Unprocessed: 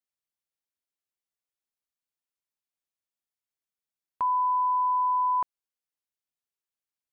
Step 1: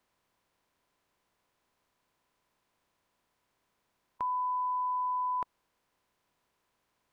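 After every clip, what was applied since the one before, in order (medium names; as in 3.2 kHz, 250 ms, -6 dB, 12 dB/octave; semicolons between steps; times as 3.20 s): spectral levelling over time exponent 0.6; peaking EQ 1 kHz -7 dB 0.72 oct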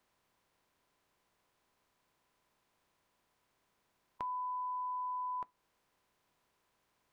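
compression 2.5:1, threshold -42 dBFS, peak gain reduction 8 dB; on a send at -15 dB: reverberation RT60 0.25 s, pre-delay 3 ms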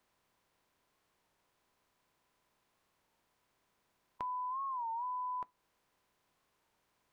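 warped record 33 1/3 rpm, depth 160 cents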